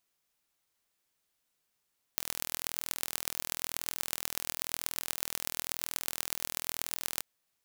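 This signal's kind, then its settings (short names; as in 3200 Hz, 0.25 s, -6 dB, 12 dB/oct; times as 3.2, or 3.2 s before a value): pulse train 41/s, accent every 5, -3 dBFS 5.04 s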